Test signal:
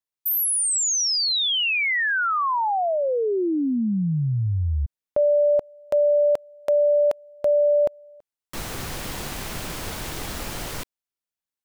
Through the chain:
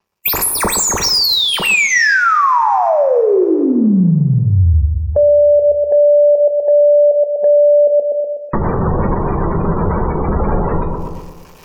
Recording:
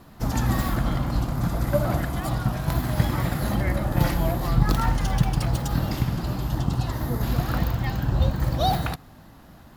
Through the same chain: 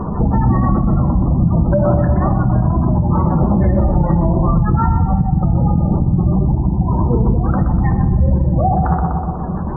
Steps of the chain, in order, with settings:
running median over 15 samples
sample-and-hold tremolo
gate on every frequency bin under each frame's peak −20 dB strong
EQ curve with evenly spaced ripples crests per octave 0.8, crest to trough 7 dB
reversed playback
upward compression, threshold −47 dBFS
reversed playback
notch filter 2,100 Hz, Q 11
on a send: bucket-brigade delay 123 ms, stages 1,024, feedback 47%, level −6.5 dB
on the sum: downward compressor 3 to 1, threshold −42 dBFS
coupled-rooms reverb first 0.45 s, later 2.6 s, from −17 dB, DRR 6.5 dB
boost into a limiter +32 dB
level −4.5 dB

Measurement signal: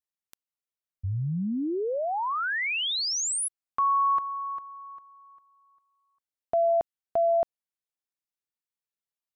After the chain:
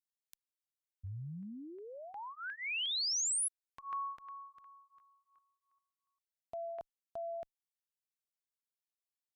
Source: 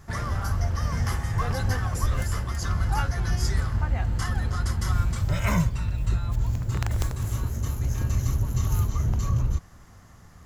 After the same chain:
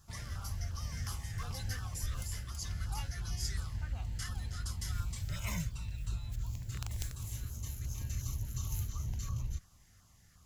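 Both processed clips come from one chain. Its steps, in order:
guitar amp tone stack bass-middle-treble 5-5-5
auto-filter notch saw down 2.8 Hz 820–2,200 Hz
level +1 dB

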